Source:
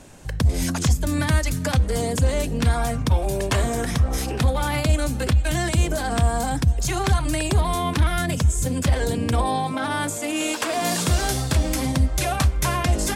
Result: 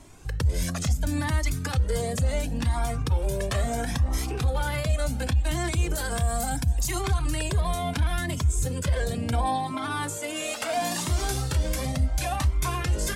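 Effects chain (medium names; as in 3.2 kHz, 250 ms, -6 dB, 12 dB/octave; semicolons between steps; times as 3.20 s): 5.95–7.01 s: treble shelf 7.6 kHz +12 dB; peak limiter -14 dBFS, peak gain reduction 5 dB; Shepard-style flanger rising 0.72 Hz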